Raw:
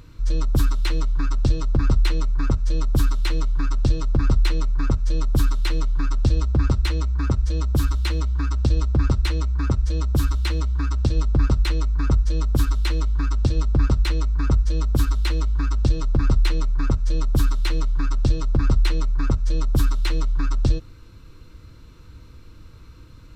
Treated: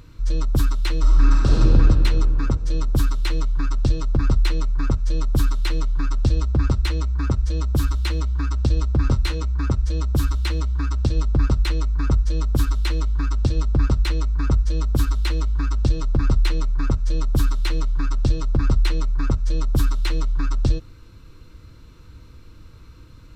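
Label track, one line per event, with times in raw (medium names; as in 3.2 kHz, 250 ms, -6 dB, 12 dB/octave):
1.000000	1.610000	reverb throw, RT60 2.9 s, DRR -5 dB
9.020000	9.440000	doubling 23 ms -8 dB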